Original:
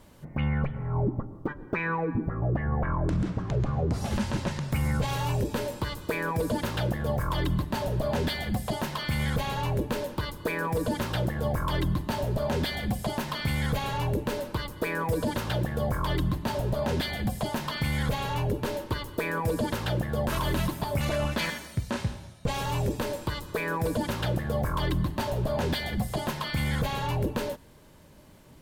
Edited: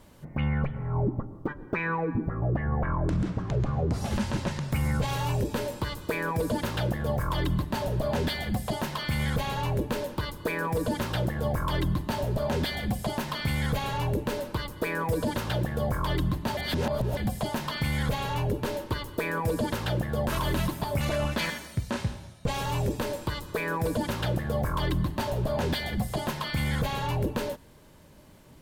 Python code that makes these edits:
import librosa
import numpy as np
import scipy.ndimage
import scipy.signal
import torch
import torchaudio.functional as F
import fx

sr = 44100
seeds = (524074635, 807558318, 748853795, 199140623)

y = fx.edit(x, sr, fx.reverse_span(start_s=16.57, length_s=0.6), tone=tone)